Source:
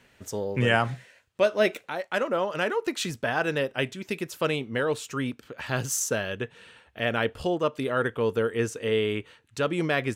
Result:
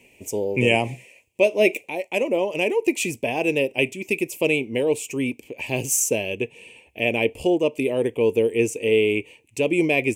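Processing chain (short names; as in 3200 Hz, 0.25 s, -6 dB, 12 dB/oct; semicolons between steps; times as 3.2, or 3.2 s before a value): EQ curve 170 Hz 0 dB, 340 Hz +9 dB, 980 Hz -1 dB, 1400 Hz -29 dB, 2400 Hz +14 dB, 3800 Hz -7 dB, 7700 Hz +9 dB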